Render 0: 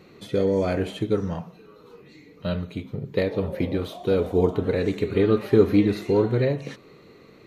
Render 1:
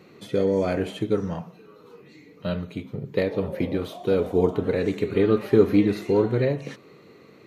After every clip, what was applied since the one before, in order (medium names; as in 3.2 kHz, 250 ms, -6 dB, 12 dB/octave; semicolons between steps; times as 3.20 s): high-pass 100 Hz; peaking EQ 3.9 kHz -2.5 dB 0.37 oct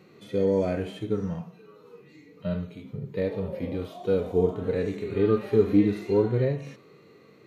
harmonic-percussive split percussive -17 dB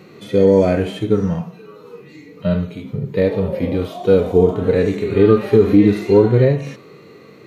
loudness maximiser +12.5 dB; trim -1 dB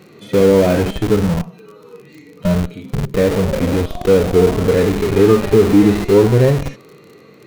crackle 42 per s -32 dBFS; in parallel at -4.5 dB: Schmitt trigger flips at -22 dBFS; on the sum: trim -1 dB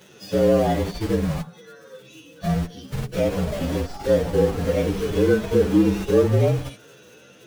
frequency axis rescaled in octaves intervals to 114%; tape noise reduction on one side only encoder only; trim -5.5 dB